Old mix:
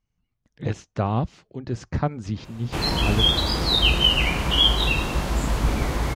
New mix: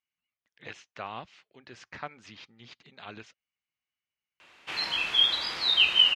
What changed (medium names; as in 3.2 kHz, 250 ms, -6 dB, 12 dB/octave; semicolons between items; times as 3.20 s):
background: entry +1.95 s; master: add band-pass filter 2.5 kHz, Q 1.3